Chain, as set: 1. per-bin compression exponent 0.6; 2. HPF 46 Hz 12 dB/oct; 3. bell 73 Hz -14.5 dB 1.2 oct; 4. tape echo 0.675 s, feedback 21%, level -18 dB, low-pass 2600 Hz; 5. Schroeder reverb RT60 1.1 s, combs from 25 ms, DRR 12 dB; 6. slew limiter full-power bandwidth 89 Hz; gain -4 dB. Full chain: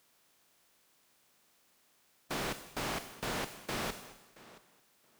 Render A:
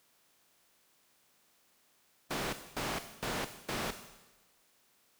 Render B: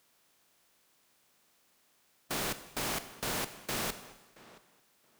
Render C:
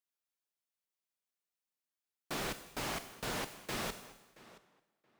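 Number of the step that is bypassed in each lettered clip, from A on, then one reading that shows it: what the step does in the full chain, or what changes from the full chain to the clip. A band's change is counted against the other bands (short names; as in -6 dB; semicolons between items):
4, momentary loudness spread change -15 LU; 6, distortion -4 dB; 1, 8 kHz band +1.5 dB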